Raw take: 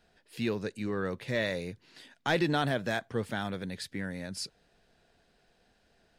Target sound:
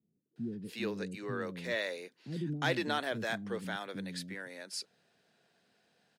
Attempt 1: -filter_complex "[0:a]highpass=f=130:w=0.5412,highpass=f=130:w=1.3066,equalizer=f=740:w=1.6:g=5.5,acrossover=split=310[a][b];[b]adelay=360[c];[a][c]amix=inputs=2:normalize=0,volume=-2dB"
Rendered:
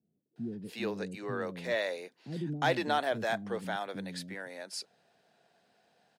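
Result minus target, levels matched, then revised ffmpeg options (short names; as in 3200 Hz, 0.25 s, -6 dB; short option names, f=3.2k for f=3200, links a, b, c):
1000 Hz band +4.0 dB
-filter_complex "[0:a]highpass=f=130:w=0.5412,highpass=f=130:w=1.3066,equalizer=f=740:w=1.6:g=-2.5,acrossover=split=310[a][b];[b]adelay=360[c];[a][c]amix=inputs=2:normalize=0,volume=-2dB"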